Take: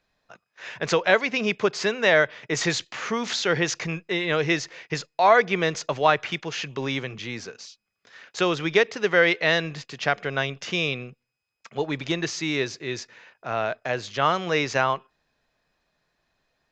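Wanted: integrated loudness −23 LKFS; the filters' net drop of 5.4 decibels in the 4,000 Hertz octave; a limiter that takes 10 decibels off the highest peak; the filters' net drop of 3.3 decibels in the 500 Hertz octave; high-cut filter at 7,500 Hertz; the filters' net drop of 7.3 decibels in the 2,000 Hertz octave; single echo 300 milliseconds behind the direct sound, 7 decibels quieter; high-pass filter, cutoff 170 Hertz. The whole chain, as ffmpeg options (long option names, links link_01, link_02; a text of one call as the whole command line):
ffmpeg -i in.wav -af "highpass=170,lowpass=7500,equalizer=frequency=500:width_type=o:gain=-3.5,equalizer=frequency=2000:width_type=o:gain=-8.5,equalizer=frequency=4000:width_type=o:gain=-3.5,alimiter=limit=-18dB:level=0:latency=1,aecho=1:1:300:0.447,volume=8dB" out.wav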